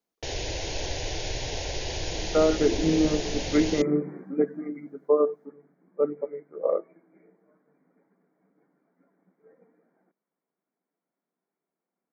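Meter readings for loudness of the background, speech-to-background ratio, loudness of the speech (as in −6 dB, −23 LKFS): −32.5 LKFS, 6.0 dB, −26.5 LKFS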